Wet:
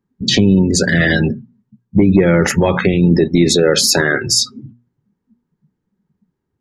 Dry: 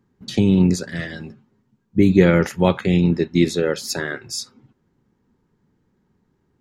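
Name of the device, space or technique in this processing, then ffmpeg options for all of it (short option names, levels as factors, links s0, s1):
loud club master: -af "acompressor=threshold=0.126:ratio=2.5,asoftclip=type=hard:threshold=0.266,alimiter=level_in=13.3:limit=0.891:release=50:level=0:latency=1,afftdn=nr=29:nf=-22,bandreject=f=60:t=h:w=6,bandreject=f=120:t=h:w=6,bandreject=f=180:t=h:w=6,bandreject=f=240:t=h:w=6,volume=0.794"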